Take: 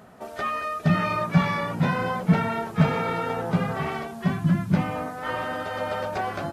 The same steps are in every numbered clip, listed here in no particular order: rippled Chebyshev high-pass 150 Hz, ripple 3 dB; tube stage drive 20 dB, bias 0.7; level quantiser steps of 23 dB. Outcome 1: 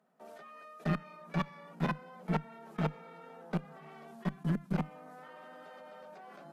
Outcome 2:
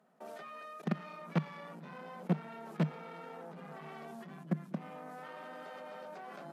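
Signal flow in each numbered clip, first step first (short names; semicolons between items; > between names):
level quantiser > rippled Chebyshev high-pass > tube stage; tube stage > level quantiser > rippled Chebyshev high-pass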